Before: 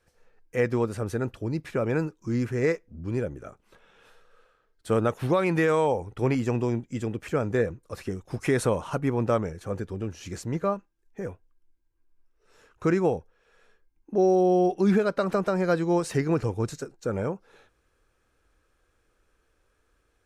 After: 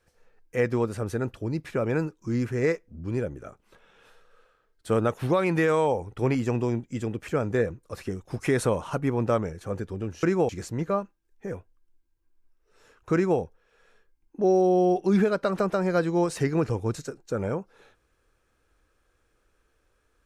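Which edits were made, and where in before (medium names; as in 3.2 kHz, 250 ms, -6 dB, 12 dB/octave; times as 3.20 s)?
12.88–13.14 s: copy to 10.23 s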